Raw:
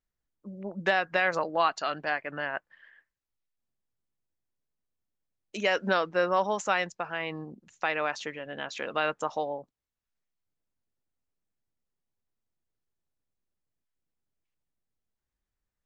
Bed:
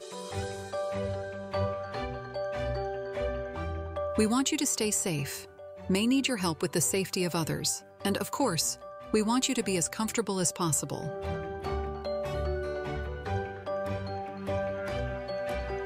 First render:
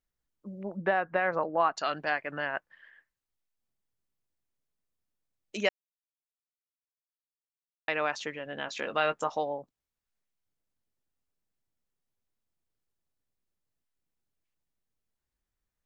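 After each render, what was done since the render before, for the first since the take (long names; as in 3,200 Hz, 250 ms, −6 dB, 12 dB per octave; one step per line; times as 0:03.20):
0:00.77–0:01.77: low-pass filter 1,500 Hz
0:05.69–0:07.88: silence
0:08.65–0:09.30: double-tracking delay 18 ms −10 dB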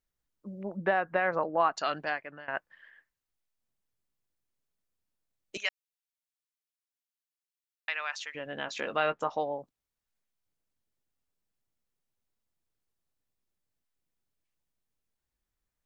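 0:01.95–0:02.48: fade out, to −20 dB
0:05.57–0:08.35: high-pass filter 1,400 Hz
0:08.96–0:09.53: high-frequency loss of the air 120 metres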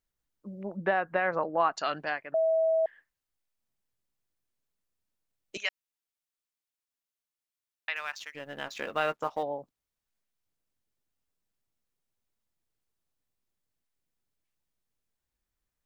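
0:02.34–0:02.86: beep over 647 Hz −22 dBFS
0:07.96–0:09.43: mu-law and A-law mismatch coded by A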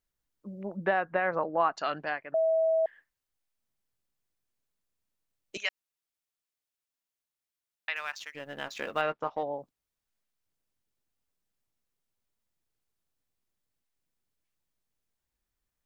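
0:01.05–0:02.85: high-shelf EQ 5,300 Hz −10.5 dB
0:09.01–0:09.54: high-frequency loss of the air 190 metres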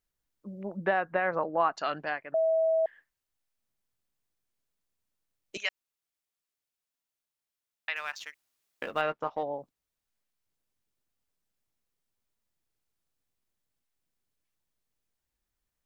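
0:08.34–0:08.82: fill with room tone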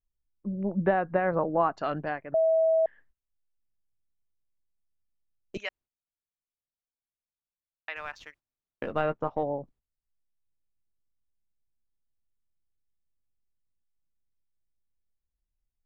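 spectral tilt −4 dB per octave
noise gate −56 dBFS, range −15 dB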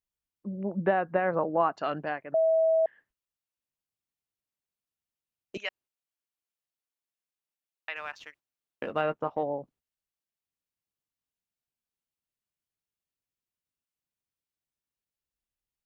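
high-pass filter 200 Hz 6 dB per octave
parametric band 2,800 Hz +3.5 dB 0.28 octaves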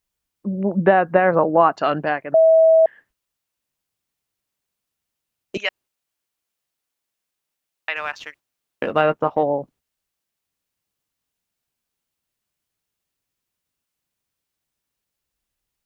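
level +11 dB
brickwall limiter −3 dBFS, peak gain reduction 1 dB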